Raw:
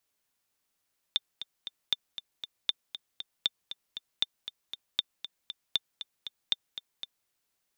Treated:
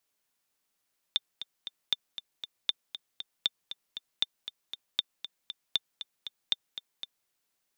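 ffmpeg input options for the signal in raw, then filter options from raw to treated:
-f lavfi -i "aevalsrc='pow(10,(-12-12*gte(mod(t,3*60/235),60/235))/20)*sin(2*PI*3580*mod(t,60/235))*exp(-6.91*mod(t,60/235)/0.03)':d=6.12:s=44100"
-af "equalizer=f=60:t=o:w=0.89:g=-11.5"

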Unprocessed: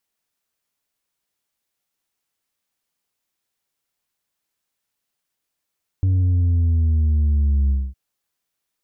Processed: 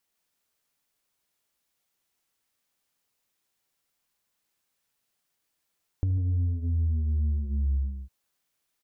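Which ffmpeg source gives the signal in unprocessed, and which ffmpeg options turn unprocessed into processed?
-f lavfi -i "aevalsrc='0.178*clip((1.91-t)/0.24,0,1)*tanh(1.5*sin(2*PI*95*1.91/log(65/95)*(exp(log(65/95)*t/1.91)-1)))/tanh(1.5)':d=1.91:s=44100"
-af "aecho=1:1:75.8|145.8:0.316|0.447,acompressor=threshold=0.0398:ratio=3"

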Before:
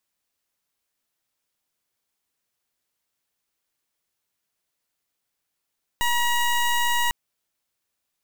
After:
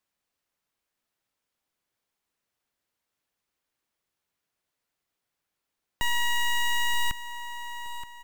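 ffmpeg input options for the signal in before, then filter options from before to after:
-f lavfi -i "aevalsrc='0.0841*(2*lt(mod(957*t,1),0.19)-1)':d=1.1:s=44100"
-filter_complex "[0:a]aecho=1:1:925|1850|2775|3700:0.211|0.0782|0.0289|0.0107,acrossover=split=340|1400[s0][s1][s2];[s1]acompressor=threshold=0.0112:ratio=6[s3];[s2]highshelf=f=4000:g=-7.5[s4];[s0][s3][s4]amix=inputs=3:normalize=0"

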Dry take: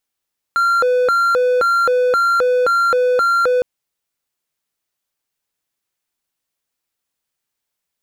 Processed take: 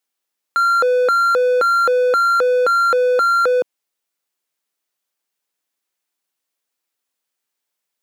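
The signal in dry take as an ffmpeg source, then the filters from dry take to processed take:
-f lavfi -i "aevalsrc='0.316*(1-4*abs(mod((939.5*t+440.5/1.9*(0.5-abs(mod(1.9*t,1)-0.5)))+0.25,1)-0.5))':d=3.06:s=44100"
-af "highpass=230"

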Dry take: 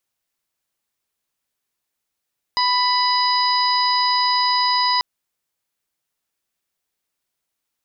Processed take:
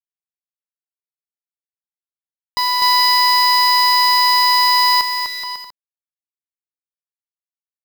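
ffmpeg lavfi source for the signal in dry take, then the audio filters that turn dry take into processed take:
-f lavfi -i "aevalsrc='0.126*sin(2*PI*992*t)+0.0447*sin(2*PI*1984*t)+0.02*sin(2*PI*2976*t)+0.0447*sin(2*PI*3968*t)+0.1*sin(2*PI*4960*t)':d=2.44:s=44100"
-filter_complex "[0:a]lowshelf=f=470:g=4,acrusher=bits=5:dc=4:mix=0:aa=0.000001,asplit=2[s0][s1];[s1]aecho=0:1:250|425|547.5|633.2|693.3:0.631|0.398|0.251|0.158|0.1[s2];[s0][s2]amix=inputs=2:normalize=0"

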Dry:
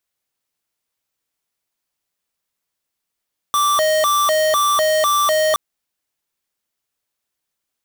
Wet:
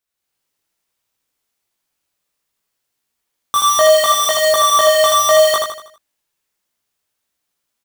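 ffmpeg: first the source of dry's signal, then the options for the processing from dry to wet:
-f lavfi -i "aevalsrc='0.158*(2*lt(mod((896.5*t+273.5/2*(0.5-abs(mod(2*t,1)-0.5))),1),0.5)-1)':d=2.02:s=44100"
-filter_complex "[0:a]dynaudnorm=f=150:g=3:m=2,flanger=delay=16.5:depth=4.7:speed=0.67,asplit=2[s0][s1];[s1]aecho=0:1:80|160|240|320|400:0.631|0.259|0.106|0.0435|0.0178[s2];[s0][s2]amix=inputs=2:normalize=0"

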